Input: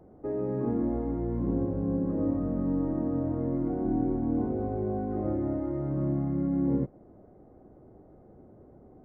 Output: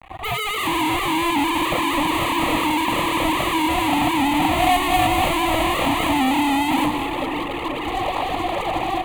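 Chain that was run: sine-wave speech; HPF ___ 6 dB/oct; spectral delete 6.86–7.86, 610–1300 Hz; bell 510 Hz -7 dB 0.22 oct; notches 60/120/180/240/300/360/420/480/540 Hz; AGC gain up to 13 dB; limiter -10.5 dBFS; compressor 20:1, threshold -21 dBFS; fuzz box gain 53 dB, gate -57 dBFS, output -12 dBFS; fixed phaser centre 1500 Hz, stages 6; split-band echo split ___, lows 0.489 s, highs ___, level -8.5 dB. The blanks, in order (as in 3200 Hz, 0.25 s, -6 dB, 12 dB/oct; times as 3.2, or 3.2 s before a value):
330 Hz, 1700 Hz, 0.194 s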